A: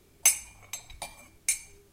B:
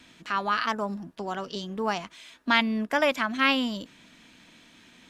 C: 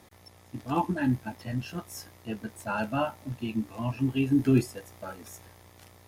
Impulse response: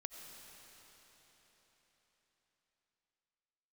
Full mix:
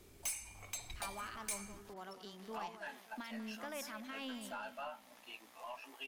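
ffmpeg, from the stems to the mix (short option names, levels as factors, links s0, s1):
-filter_complex "[0:a]acompressor=threshold=0.02:ratio=2,volume=1[s0];[1:a]alimiter=limit=0.126:level=0:latency=1:release=35,adelay=700,volume=0.141,asplit=2[s1][s2];[s2]volume=0.266[s3];[2:a]highpass=f=600:w=0.5412,highpass=f=600:w=1.3066,acompressor=threshold=0.0178:ratio=6,adelay=1850,volume=0.501[s4];[s3]aecho=0:1:193|386|579|772|965|1158|1351:1|0.49|0.24|0.118|0.0576|0.0282|0.0138[s5];[s0][s1][s4][s5]amix=inputs=4:normalize=0,equalizer=f=160:t=o:w=0.26:g=-6,aeval=exprs='(tanh(56.2*val(0)+0.1)-tanh(0.1))/56.2':c=same"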